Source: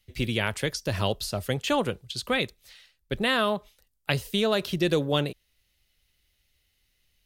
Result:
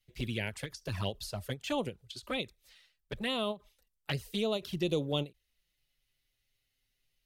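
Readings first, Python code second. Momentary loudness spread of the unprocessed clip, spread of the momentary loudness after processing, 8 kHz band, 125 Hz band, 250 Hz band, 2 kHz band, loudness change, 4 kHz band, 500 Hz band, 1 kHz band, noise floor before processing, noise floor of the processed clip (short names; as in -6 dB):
9 LU, 11 LU, -10.0 dB, -7.5 dB, -7.5 dB, -11.0 dB, -8.0 dB, -8.0 dB, -8.5 dB, -11.0 dB, -72 dBFS, -81 dBFS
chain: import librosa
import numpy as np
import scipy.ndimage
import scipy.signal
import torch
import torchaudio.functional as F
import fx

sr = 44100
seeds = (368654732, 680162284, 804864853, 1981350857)

y = fx.env_flanger(x, sr, rest_ms=7.7, full_db=-21.0)
y = fx.end_taper(y, sr, db_per_s=320.0)
y = y * librosa.db_to_amplitude(-6.0)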